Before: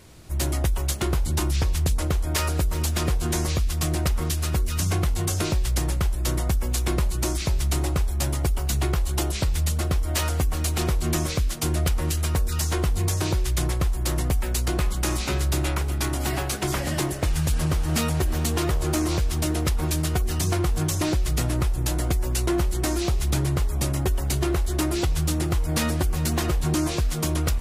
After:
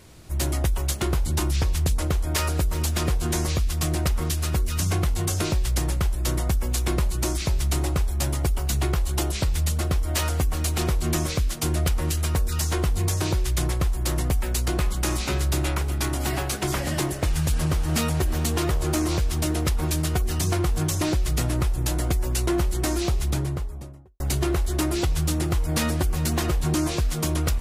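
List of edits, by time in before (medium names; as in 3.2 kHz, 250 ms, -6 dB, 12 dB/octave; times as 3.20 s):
23.05–24.20 s: studio fade out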